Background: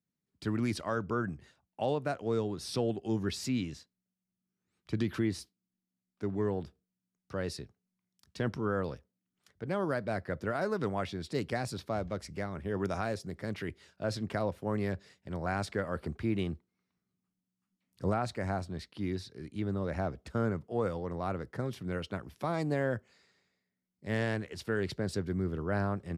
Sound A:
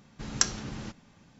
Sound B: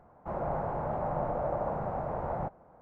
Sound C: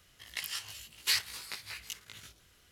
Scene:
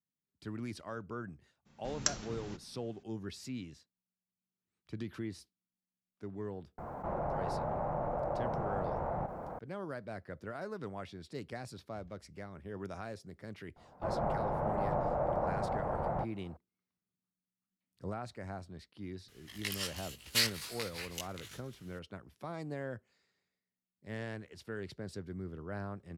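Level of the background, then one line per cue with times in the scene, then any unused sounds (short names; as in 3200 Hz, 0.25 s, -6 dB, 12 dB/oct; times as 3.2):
background -9.5 dB
1.65 add A -7 dB, fades 0.02 s
6.78 add B -5 dB + fast leveller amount 70%
13.76 add B -1 dB
19.28 add C -0.5 dB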